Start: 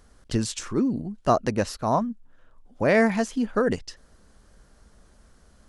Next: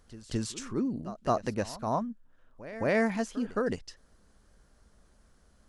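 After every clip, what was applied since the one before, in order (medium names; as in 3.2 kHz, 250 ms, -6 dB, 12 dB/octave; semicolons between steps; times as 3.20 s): pre-echo 217 ms -16 dB; trim -7 dB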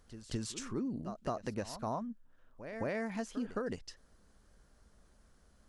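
compression 10:1, threshold -30 dBFS, peak gain reduction 9.5 dB; trim -2.5 dB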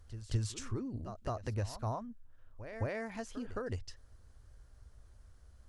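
resonant low shelf 130 Hz +8.5 dB, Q 3; trim -1.5 dB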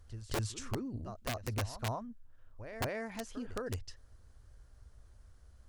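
integer overflow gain 28 dB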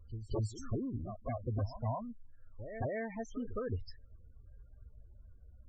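loudest bins only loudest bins 16; trim +2 dB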